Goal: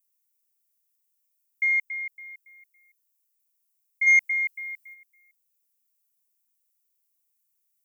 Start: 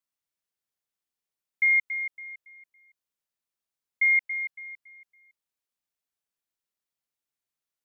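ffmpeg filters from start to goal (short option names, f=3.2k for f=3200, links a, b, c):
-filter_complex "[0:a]aexciter=amount=2.1:drive=3.3:freq=2k,asplit=3[a][b][c];[a]afade=t=out:st=4.06:d=0.02[d];[b]acontrast=83,afade=t=in:st=4.06:d=0.02,afade=t=out:st=4.93:d=0.02[e];[c]afade=t=in:st=4.93:d=0.02[f];[d][e][f]amix=inputs=3:normalize=0,aemphasis=mode=production:type=50kf,volume=-8.5dB"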